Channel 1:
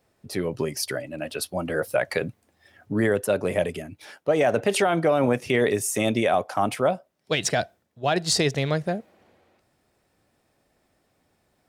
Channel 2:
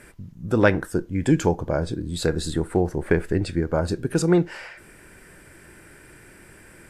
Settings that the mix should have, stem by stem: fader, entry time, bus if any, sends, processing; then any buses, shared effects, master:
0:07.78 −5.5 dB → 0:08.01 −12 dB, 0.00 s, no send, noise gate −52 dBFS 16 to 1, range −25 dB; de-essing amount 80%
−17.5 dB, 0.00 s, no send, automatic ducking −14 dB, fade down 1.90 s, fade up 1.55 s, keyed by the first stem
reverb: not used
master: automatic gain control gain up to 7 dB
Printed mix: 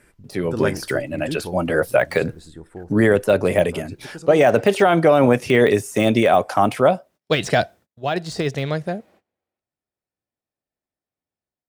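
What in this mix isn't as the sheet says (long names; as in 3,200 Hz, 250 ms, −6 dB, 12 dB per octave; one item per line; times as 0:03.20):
stem 1 −5.5 dB → +0.5 dB
stem 2 −17.5 dB → −7.5 dB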